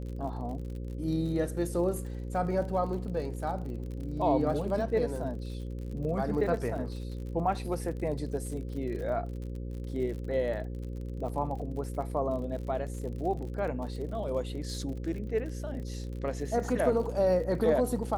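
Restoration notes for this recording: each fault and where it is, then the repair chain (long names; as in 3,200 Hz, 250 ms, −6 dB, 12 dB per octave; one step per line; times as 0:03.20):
mains buzz 60 Hz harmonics 9 −37 dBFS
surface crackle 54 per second −39 dBFS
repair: click removal
hum removal 60 Hz, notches 9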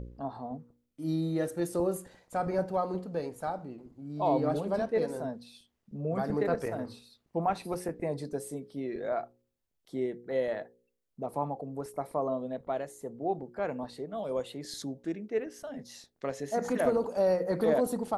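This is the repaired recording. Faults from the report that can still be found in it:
none of them is left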